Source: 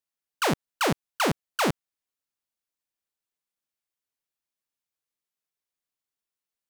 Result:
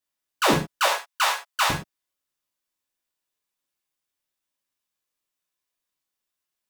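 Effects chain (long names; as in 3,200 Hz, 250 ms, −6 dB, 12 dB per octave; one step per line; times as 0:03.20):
0:00.86–0:01.70: inverse Chebyshev high-pass filter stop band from 230 Hz, stop band 60 dB
reverb whose tail is shaped and stops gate 140 ms falling, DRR −4 dB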